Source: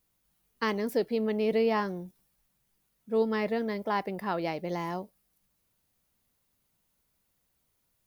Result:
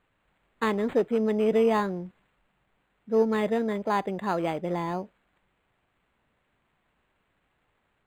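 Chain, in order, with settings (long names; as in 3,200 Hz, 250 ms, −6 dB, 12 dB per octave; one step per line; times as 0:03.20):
linearly interpolated sample-rate reduction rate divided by 8×
level +4 dB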